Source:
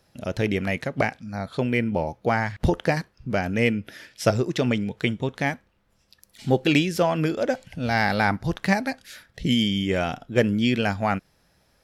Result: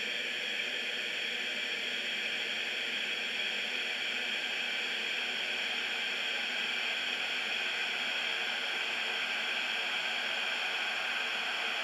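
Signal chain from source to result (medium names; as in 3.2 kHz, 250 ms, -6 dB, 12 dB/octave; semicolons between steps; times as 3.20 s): octave divider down 2 oct, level +3 dB; high-pass 1.4 kHz 12 dB/octave; compressor with a negative ratio -29 dBFS, ratio -1; Paulstretch 45×, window 1.00 s, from 10.55 s; trim -2.5 dB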